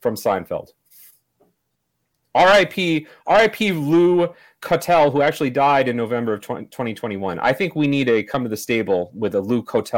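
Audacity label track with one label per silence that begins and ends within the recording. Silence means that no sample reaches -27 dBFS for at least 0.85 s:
0.600000	2.350000	silence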